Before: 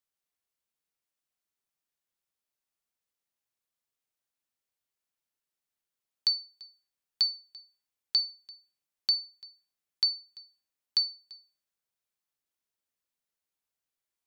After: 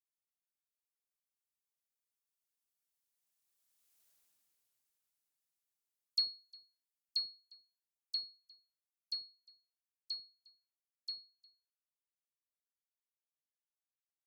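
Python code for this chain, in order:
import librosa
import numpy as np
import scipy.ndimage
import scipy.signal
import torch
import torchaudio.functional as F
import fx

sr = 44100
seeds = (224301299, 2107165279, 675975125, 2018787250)

y = fx.doppler_pass(x, sr, speed_mps=15, closest_m=3.4, pass_at_s=4.06)
y = fx.high_shelf(y, sr, hz=4400.0, db=10.5)
y = fx.dispersion(y, sr, late='lows', ms=104.0, hz=1200.0)
y = y * librosa.db_to_amplitude(7.5)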